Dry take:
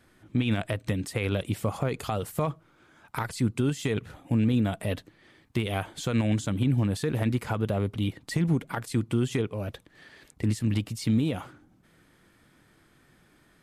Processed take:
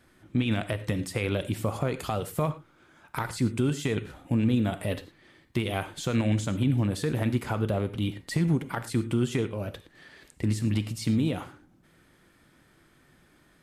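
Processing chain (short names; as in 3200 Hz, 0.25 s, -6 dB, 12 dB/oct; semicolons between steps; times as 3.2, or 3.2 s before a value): non-linear reverb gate 0.13 s flat, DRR 11 dB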